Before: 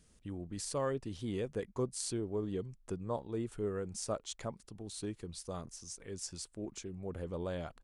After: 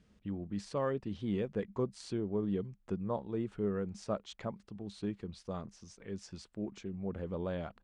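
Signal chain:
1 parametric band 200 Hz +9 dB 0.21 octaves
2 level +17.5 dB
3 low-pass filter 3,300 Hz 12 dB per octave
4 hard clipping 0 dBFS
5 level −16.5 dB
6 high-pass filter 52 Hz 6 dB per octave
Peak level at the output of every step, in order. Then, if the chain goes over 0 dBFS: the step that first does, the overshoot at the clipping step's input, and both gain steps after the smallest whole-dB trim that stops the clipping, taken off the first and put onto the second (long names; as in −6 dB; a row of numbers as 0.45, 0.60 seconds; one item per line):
−19.5, −2.0, −5.0, −5.0, −21.5, −22.5 dBFS
no step passes full scale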